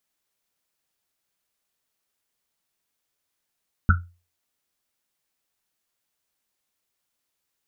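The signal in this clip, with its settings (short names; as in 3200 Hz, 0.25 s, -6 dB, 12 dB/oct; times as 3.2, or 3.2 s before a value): Risset drum, pitch 87 Hz, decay 0.33 s, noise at 1400 Hz, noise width 190 Hz, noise 35%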